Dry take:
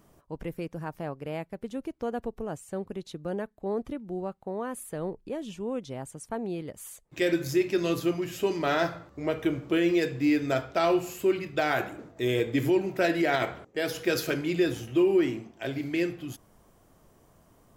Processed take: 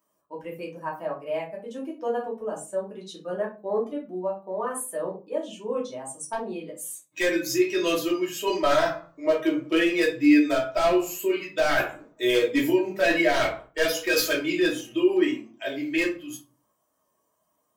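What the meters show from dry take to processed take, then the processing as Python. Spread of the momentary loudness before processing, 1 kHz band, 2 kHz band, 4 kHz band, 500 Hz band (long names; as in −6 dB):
12 LU, +3.5 dB, +6.0 dB, +6.5 dB, +3.5 dB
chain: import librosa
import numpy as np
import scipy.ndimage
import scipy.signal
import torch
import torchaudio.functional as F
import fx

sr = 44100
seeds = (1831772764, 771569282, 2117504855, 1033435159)

p1 = fx.bin_expand(x, sr, power=1.5)
p2 = scipy.signal.sosfilt(scipy.signal.butter(2, 480.0, 'highpass', fs=sr, output='sos'), p1)
p3 = fx.over_compress(p2, sr, threshold_db=-33.0, ratio=-0.5)
p4 = p2 + F.gain(torch.from_numpy(p3), -1.5).numpy()
p5 = 10.0 ** (-21.0 / 20.0) * (np.abs((p4 / 10.0 ** (-21.0 / 20.0) + 3.0) % 4.0 - 2.0) - 1.0)
y = fx.room_shoebox(p5, sr, seeds[0], volume_m3=140.0, walls='furnished', distance_m=2.8)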